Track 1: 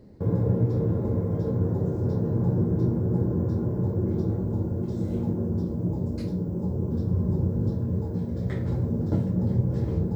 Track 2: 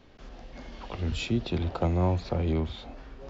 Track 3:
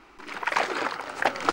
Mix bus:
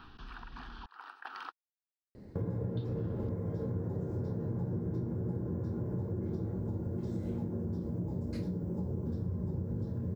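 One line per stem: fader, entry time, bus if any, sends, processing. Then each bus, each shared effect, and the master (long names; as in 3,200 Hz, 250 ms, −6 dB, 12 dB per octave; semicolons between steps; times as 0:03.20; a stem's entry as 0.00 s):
−1.0 dB, 2.15 s, no bus, no send, no processing
+2.5 dB, 0.00 s, muted 0:00.86–0:02.77, bus A, no send, no processing
+2.0 dB, 0.00 s, bus A, no send, high-pass filter 680 Hz 12 dB per octave; spectral tilt −2.5 dB per octave; amplitude tremolo 2.9 Hz, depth 89%; automatic ducking −20 dB, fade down 1.05 s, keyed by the second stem
bus A: 0.0 dB, phaser with its sweep stopped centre 2,100 Hz, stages 6; downward compressor 10 to 1, threshold −43 dBFS, peak gain reduction 17 dB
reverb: not used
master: parametric band 1,800 Hz +4.5 dB 0.87 octaves; downward compressor 5 to 1, threshold −33 dBFS, peak gain reduction 13.5 dB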